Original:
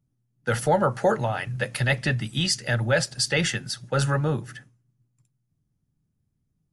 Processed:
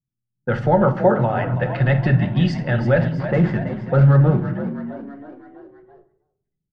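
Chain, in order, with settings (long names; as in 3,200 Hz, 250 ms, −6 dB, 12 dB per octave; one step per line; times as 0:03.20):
0:02.98–0:04.45: running median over 15 samples
low-pass that shuts in the quiet parts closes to 460 Hz, open at −21.5 dBFS
on a send: echo with shifted repeats 327 ms, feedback 54%, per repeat +47 Hz, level −12.5 dB
on the sum: automatic gain control gain up to 3.5 dB
in parallel at −0.5 dB: brickwall limiter −15 dBFS, peak gain reduction 8.5 dB
on the sum: noise gate −48 dBFS, range −19 dB
head-to-tape spacing loss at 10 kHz 44 dB
rectangular room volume 960 cubic metres, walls furnished, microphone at 0.95 metres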